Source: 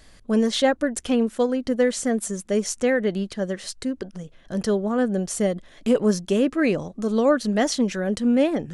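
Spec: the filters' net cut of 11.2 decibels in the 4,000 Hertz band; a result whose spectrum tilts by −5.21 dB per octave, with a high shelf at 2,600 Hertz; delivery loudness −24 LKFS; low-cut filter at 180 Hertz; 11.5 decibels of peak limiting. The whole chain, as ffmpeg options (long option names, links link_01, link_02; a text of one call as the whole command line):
ffmpeg -i in.wav -af "highpass=180,highshelf=frequency=2600:gain=-7,equalizer=frequency=4000:width_type=o:gain=-8.5,volume=6dB,alimiter=limit=-14.5dB:level=0:latency=1" out.wav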